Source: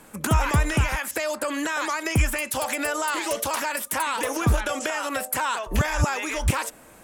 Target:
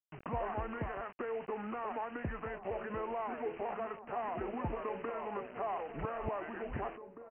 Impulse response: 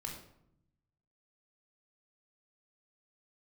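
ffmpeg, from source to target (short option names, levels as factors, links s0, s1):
-filter_complex "[0:a]lowpass=1100,aemphasis=mode=production:type=riaa,aresample=8000,acrusher=bits=6:mix=0:aa=0.000001,aresample=44100,atempo=1.3,asplit=2[s0][s1];[s1]adelay=1574,volume=0.355,highshelf=f=4000:g=-35.4[s2];[s0][s2]amix=inputs=2:normalize=0,asetrate=32667,aresample=44100,volume=0.398"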